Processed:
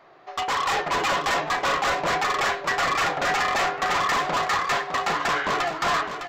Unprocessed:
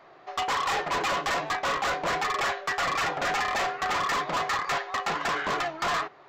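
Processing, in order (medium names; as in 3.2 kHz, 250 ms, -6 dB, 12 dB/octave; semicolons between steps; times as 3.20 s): level rider gain up to 3.5 dB; on a send: feedback delay 608 ms, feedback 22%, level -8.5 dB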